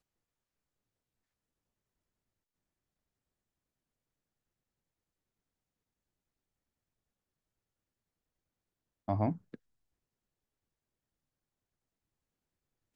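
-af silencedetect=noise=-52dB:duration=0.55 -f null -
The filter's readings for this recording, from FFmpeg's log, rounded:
silence_start: 0.00
silence_end: 9.08 | silence_duration: 9.08
silence_start: 9.55
silence_end: 12.96 | silence_duration: 3.41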